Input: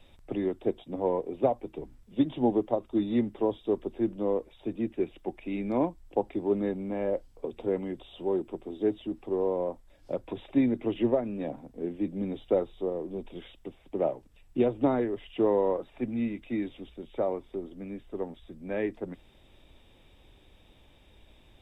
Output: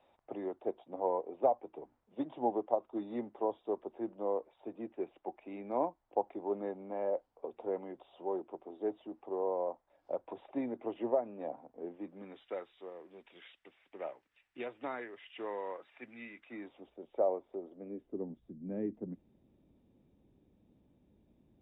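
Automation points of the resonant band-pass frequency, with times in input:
resonant band-pass, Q 1.6
0:11.90 800 Hz
0:12.54 1,900 Hz
0:16.27 1,900 Hz
0:16.92 640 Hz
0:17.74 640 Hz
0:18.27 210 Hz

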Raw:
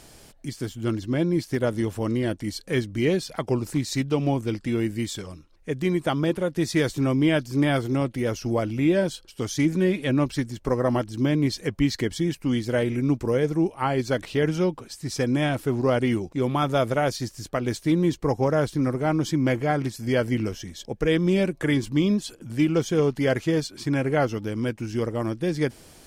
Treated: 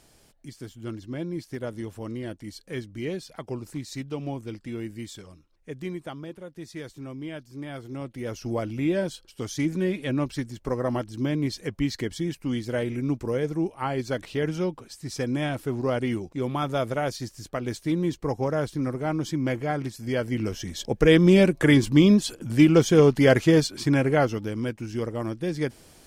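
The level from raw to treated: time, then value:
0:05.84 −9 dB
0:06.28 −15.5 dB
0:07.67 −15.5 dB
0:08.49 −4 dB
0:20.29 −4 dB
0:20.76 +5 dB
0:23.62 +5 dB
0:24.74 −3 dB

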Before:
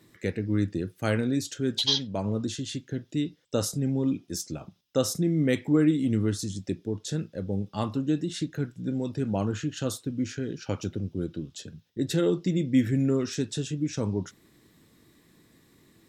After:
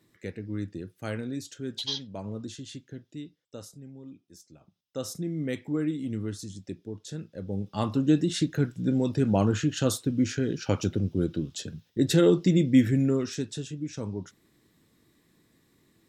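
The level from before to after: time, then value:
0:02.79 −7.5 dB
0:03.92 −19 dB
0:04.49 −19 dB
0:05.11 −7 dB
0:07.18 −7 dB
0:08.10 +4.5 dB
0:12.58 +4.5 dB
0:13.73 −5.5 dB

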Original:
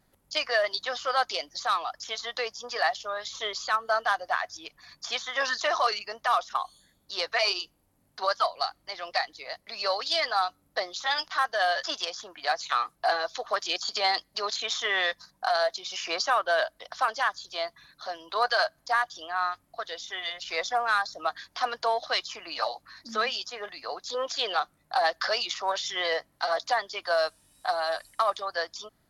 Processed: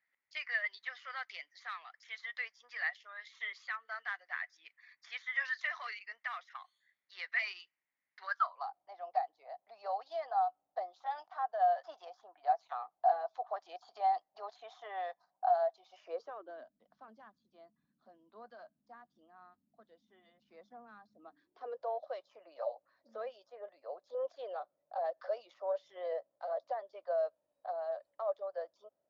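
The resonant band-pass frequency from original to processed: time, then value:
resonant band-pass, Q 7.2
0:08.21 2,000 Hz
0:08.76 740 Hz
0:15.90 740 Hz
0:16.71 220 Hz
0:21.15 220 Hz
0:21.85 570 Hz

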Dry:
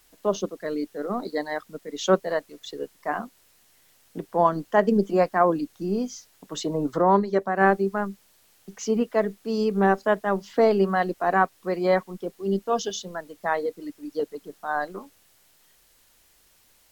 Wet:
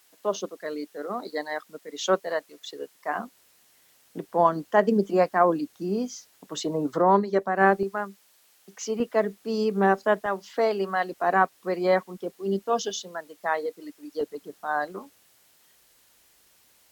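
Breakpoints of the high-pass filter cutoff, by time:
high-pass filter 6 dB per octave
500 Hz
from 0:03.15 160 Hz
from 0:07.83 570 Hz
from 0:09.00 180 Hz
from 0:10.26 680 Hz
from 0:11.12 200 Hz
from 0:12.94 440 Hz
from 0:14.21 120 Hz

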